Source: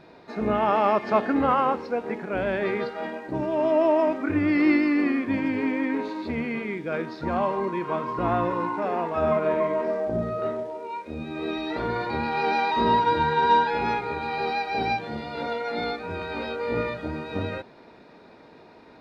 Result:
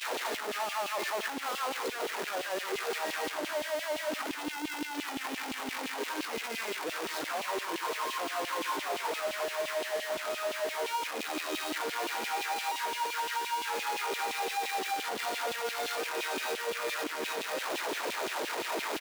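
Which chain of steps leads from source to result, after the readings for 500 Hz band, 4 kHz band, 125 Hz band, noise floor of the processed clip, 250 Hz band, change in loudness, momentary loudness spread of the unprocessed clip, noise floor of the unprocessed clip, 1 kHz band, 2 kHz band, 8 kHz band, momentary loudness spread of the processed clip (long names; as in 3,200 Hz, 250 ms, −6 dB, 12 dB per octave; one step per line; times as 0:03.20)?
−10.0 dB, +3.0 dB, −25.5 dB, −39 dBFS, −16.5 dB, −8.0 dB, 11 LU, −50 dBFS, −8.5 dB, −2.5 dB, can't be measured, 3 LU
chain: sign of each sample alone
brickwall limiter −35 dBFS, peak gain reduction 20 dB
auto-filter high-pass saw down 5.8 Hz 270–3,200 Hz
low-shelf EQ 190 Hz −8 dB
single-tap delay 84 ms −20 dB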